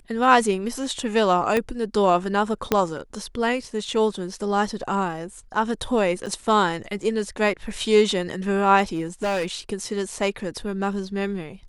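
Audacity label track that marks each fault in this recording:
1.570000	1.570000	pop -9 dBFS
2.720000	2.720000	pop -5 dBFS
6.260000	6.270000	dropout 7 ms
8.950000	9.460000	clipped -20.5 dBFS

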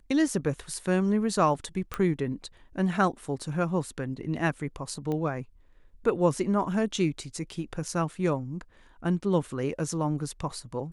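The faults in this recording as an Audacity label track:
1.940000	1.940000	pop -16 dBFS
5.120000	5.120000	pop -21 dBFS

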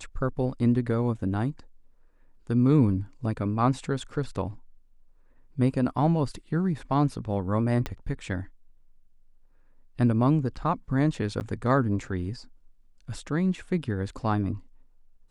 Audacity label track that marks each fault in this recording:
7.860000	7.860000	pop -16 dBFS
11.400000	11.410000	dropout 9.3 ms

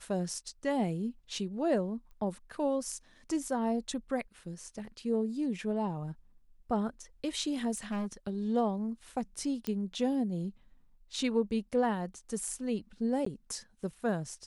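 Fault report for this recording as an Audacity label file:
2.110000	2.110000	pop -43 dBFS
7.740000	8.070000	clipped -31 dBFS
9.670000	9.670000	pop -21 dBFS
13.250000	13.260000	dropout 14 ms

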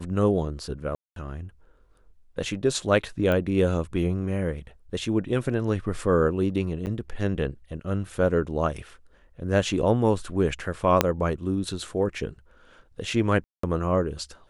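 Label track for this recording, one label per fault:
0.950000	1.160000	dropout 212 ms
3.320000	3.320000	pop -15 dBFS
6.860000	6.870000	dropout 9.4 ms
11.010000	11.010000	pop -3 dBFS
13.440000	13.630000	dropout 194 ms

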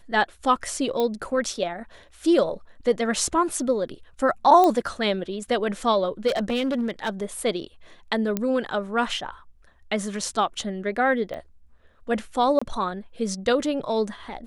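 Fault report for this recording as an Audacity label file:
1.000000	1.000000	pop -13 dBFS
4.640000	4.640000	pop -9 dBFS
6.270000	7.220000	clipped -20.5 dBFS
8.370000	8.370000	pop -11 dBFS
11.340000	11.340000	pop -23 dBFS
12.590000	12.620000	dropout 25 ms

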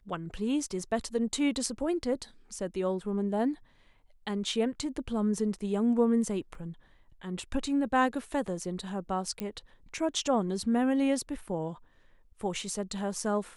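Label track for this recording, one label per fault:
6.550000	6.550000	dropout 2.1 ms
9.400000	9.400000	pop -20 dBFS

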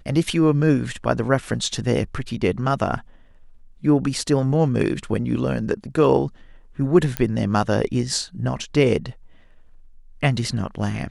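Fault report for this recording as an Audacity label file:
7.170000	7.170000	pop -7 dBFS

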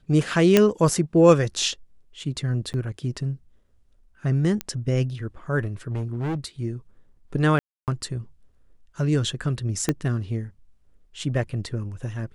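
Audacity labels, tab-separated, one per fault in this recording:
0.570000	0.570000	pop -2 dBFS
2.730000	2.740000	dropout 9.1 ms
4.610000	4.610000	pop -11 dBFS
5.900000	6.370000	clipped -24 dBFS
7.590000	7.880000	dropout 288 ms
9.890000	9.890000	pop -8 dBFS

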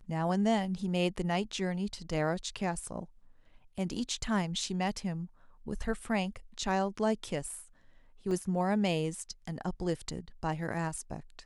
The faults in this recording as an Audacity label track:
8.310000	8.310000	dropout 2.6 ms

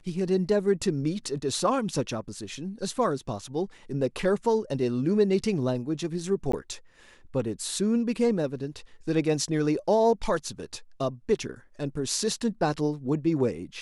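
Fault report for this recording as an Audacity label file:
6.520000	6.530000	dropout 14 ms

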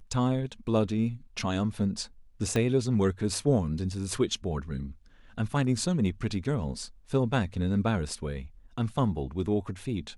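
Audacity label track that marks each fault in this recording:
2.560000	2.560000	pop -15 dBFS
6.440000	6.450000	dropout 6.3 ms

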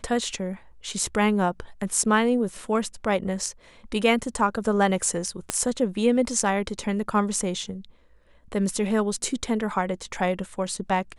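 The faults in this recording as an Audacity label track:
5.500000	5.500000	pop -9 dBFS

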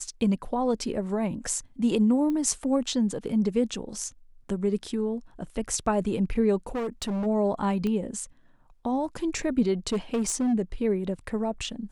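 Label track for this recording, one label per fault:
2.300000	2.300000	pop -21 dBFS
6.750000	7.270000	clipped -26.5 dBFS
7.870000	7.870000	pop -19 dBFS
9.920000	10.540000	clipped -21.5 dBFS

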